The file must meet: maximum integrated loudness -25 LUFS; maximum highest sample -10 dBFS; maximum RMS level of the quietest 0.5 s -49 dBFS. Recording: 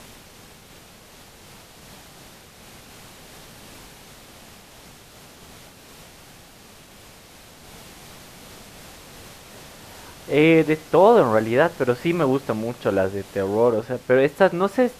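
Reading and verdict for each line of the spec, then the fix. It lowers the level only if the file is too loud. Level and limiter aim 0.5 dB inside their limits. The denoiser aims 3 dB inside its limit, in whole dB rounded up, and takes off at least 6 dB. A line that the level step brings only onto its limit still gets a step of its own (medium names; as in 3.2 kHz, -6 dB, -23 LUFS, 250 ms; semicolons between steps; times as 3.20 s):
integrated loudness -19.5 LUFS: fail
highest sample -4.0 dBFS: fail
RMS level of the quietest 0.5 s -47 dBFS: fail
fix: trim -6 dB; peak limiter -10.5 dBFS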